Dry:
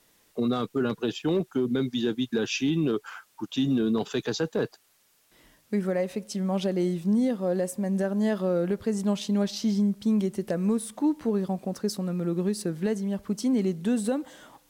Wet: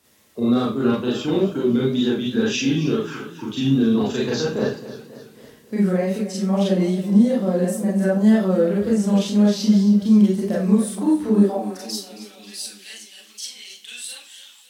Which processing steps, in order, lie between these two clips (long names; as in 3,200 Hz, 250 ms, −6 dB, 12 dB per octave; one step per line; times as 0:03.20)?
four-comb reverb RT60 0.32 s, combs from 29 ms, DRR −5.5 dB
high-pass filter sweep 77 Hz → 3,100 Hz, 0:11.26–0:11.88
tape wow and flutter 42 cents
feedback echo with a swinging delay time 271 ms, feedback 54%, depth 82 cents, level −14.5 dB
level −1 dB